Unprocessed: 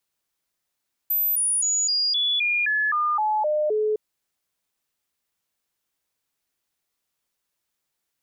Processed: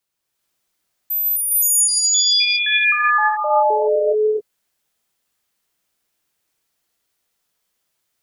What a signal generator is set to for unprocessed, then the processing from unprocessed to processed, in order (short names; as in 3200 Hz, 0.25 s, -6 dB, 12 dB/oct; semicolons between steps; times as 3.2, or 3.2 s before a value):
stepped sine 13700 Hz down, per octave 2, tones 11, 0.26 s, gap 0.00 s -19.5 dBFS
non-linear reverb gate 0.46 s rising, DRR -6 dB